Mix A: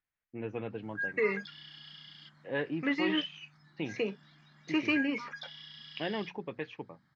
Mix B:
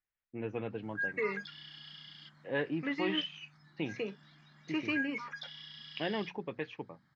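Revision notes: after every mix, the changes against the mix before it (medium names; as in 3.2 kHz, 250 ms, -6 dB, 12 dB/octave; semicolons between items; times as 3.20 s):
second voice -5.0 dB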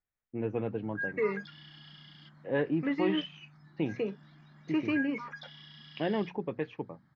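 master: add tilt shelf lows +6 dB, about 1.5 kHz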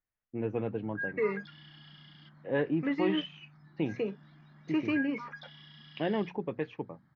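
background: add distance through air 110 m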